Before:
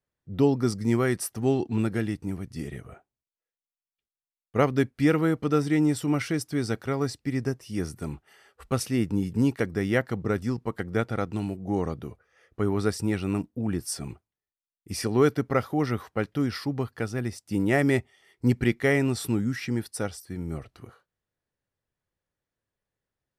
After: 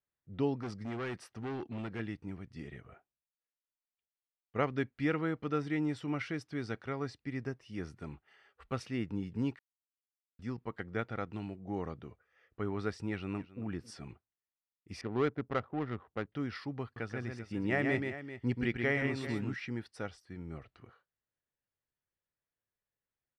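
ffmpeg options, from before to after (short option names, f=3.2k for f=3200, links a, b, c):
-filter_complex "[0:a]asettb=1/sr,asplit=3[a][b][c];[a]atrim=end=0.594[d];[b]atrim=start=0.59:end=2,asetpts=PTS-STARTPTS,afade=t=in:d=0.004:c=qsin,afade=t=out:st=1.406:d=0.004:c=qsin,asoftclip=type=hard:threshold=-25dB[e];[c]atrim=start=1.996[f];[d][e]acrossfade=d=0.004:c1=hsin:c2=qsin[g];[g][f]acrossfade=d=0.004:c1=qsin:c2=hsin,asplit=2[h][i];[i]afade=t=in:st=13.1:d=0.01,afade=t=out:st=13.63:d=0.01,aecho=0:1:270|540:0.141254|0.0211881[j];[h][j]amix=inputs=2:normalize=0,asettb=1/sr,asplit=3[k][l][m];[k]atrim=end=15.014[n];[l]atrim=start=15.01:end=16.32,asetpts=PTS-STARTPTS,afade=t=in:d=0.004:c=qsin,afade=t=out:st=1.306:d=0.004:c=qsin,adynamicsmooth=sensitivity=2:basefreq=630[o];[m]atrim=start=16.316[p];[n][o]acrossfade=d=0.004:c1=hsin:c2=qsin[q];[q][p]acrossfade=d=0.004:c1=qsin:c2=hsin,asettb=1/sr,asplit=3[r][s][t];[r]atrim=end=16.834[u];[s]atrim=start=16.83:end=19.54,asetpts=PTS-STARTPTS,afade=t=in:d=0.004:c=qsin,afade=t=out:st=2.706:d=0.004:c=qsin,aecho=1:1:131|392:0.562|0.237,atrim=end_sample=119511[v];[t]atrim=start=19.536[w];[u][v]acrossfade=d=0.004:c1=hsin:c2=qsin[x];[x][w]acrossfade=d=0.004:c1=qsin:c2=hsin,asplit=3[y][z][aa];[y]atrim=end=9.59,asetpts=PTS-STARTPTS,afade=t=out:st=9.586:d=0.004:c=hsin[ab];[z]atrim=start=9.59:end=10.39,asetpts=PTS-STARTPTS,volume=0[ac];[aa]atrim=start=10.39,asetpts=PTS-STARTPTS,afade=t=in:d=0.004:c=hsin[ad];[ab][ac][ad]concat=n=3:v=0:a=1,lowpass=2.7k,tiltshelf=f=1.4k:g=-4.5,volume=-6.5dB"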